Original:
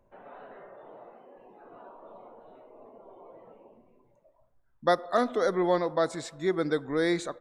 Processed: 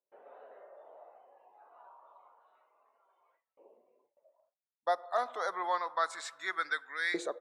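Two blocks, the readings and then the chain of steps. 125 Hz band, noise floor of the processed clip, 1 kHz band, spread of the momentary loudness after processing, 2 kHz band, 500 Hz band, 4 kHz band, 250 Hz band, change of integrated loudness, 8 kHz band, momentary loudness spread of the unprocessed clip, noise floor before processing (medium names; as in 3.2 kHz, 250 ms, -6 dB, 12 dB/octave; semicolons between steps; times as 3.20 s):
under -25 dB, under -85 dBFS, -2.0 dB, 6 LU, +1.0 dB, -11.5 dB, -4.0 dB, -17.5 dB, -6.5 dB, no reading, 6 LU, -66 dBFS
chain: LFO high-pass saw up 0.28 Hz 420–1800 Hz; gate with hold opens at -52 dBFS; gain riding within 5 dB 0.5 s; trim -6 dB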